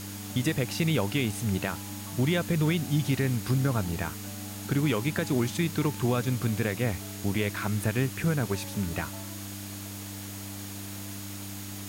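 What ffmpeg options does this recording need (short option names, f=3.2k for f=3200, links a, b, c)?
-af "bandreject=f=99.6:t=h:w=4,bandreject=f=199.2:t=h:w=4,bandreject=f=298.8:t=h:w=4,bandreject=f=6.7k:w=30,afwtdn=0.0079"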